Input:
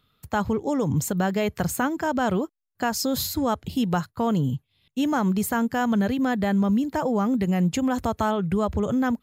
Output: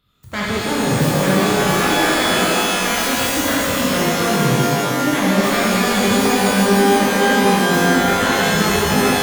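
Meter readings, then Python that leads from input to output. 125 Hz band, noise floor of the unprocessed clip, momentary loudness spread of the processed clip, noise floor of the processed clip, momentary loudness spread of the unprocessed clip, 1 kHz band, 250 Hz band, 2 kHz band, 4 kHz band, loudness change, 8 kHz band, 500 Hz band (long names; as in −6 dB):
+6.0 dB, −74 dBFS, 3 LU, −22 dBFS, 5 LU, +9.5 dB, +5.0 dB, +15.0 dB, +16.5 dB, +9.0 dB, +13.5 dB, +9.5 dB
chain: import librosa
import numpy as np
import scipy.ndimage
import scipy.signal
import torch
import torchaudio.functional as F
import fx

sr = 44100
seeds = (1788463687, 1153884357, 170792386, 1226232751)

y = fx.self_delay(x, sr, depth_ms=0.59)
y = fx.rev_shimmer(y, sr, seeds[0], rt60_s=3.0, semitones=12, shimmer_db=-2, drr_db=-7.5)
y = F.gain(torch.from_numpy(y), -2.5).numpy()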